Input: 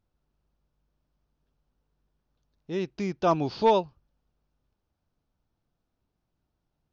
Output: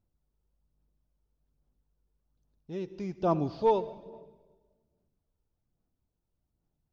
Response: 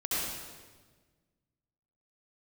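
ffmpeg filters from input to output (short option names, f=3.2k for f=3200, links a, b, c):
-filter_complex "[0:a]acrossover=split=4500[a][b];[b]acompressor=threshold=-53dB:ratio=4:attack=1:release=60[c];[a][c]amix=inputs=2:normalize=0,equalizer=f=2.2k:w=0.44:g=-8.5,asplit=2[d][e];[1:a]atrim=start_sample=2205,adelay=11[f];[e][f]afir=irnorm=-1:irlink=0,volume=-22dB[g];[d][g]amix=inputs=2:normalize=0,aphaser=in_gain=1:out_gain=1:delay=2.3:decay=0.37:speed=1.2:type=sinusoidal,volume=-4dB"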